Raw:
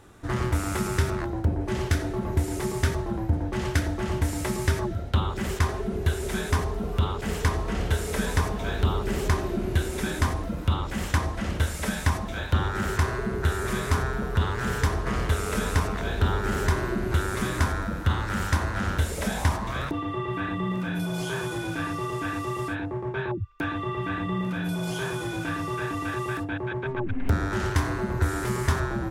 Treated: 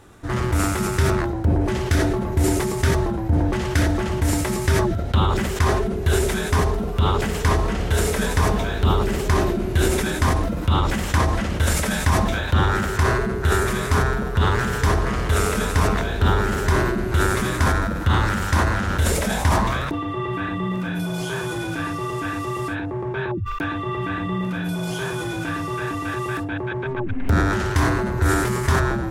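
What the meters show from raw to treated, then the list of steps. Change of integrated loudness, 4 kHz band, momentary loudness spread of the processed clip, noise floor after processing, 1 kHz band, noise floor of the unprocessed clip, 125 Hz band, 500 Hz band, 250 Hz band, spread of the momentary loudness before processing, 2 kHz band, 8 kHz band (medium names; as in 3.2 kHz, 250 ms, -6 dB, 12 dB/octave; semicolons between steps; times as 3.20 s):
+6.0 dB, +6.0 dB, 6 LU, -27 dBFS, +7.0 dB, -33 dBFS, +5.5 dB, +6.5 dB, +5.5 dB, 4 LU, +6.0 dB, +7.0 dB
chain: decay stretcher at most 28 dB/s; trim +3 dB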